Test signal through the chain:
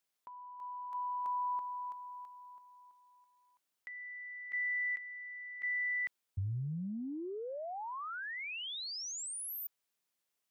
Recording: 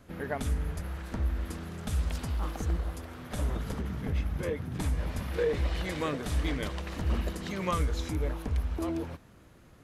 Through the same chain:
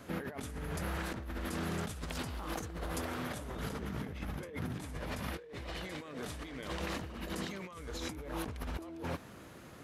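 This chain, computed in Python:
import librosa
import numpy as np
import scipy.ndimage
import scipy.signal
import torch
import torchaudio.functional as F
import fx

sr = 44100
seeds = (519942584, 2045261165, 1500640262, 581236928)

y = fx.highpass(x, sr, hz=190.0, slope=6)
y = fx.over_compress(y, sr, threshold_db=-43.0, ratio=-1.0)
y = F.gain(torch.from_numpy(y), 2.0).numpy()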